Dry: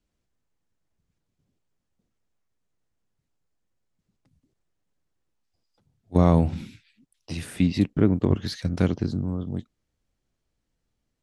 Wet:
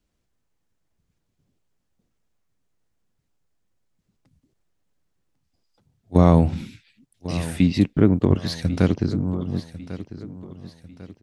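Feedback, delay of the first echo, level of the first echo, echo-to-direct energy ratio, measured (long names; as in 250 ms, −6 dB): 41%, 1,097 ms, −15.0 dB, −14.0 dB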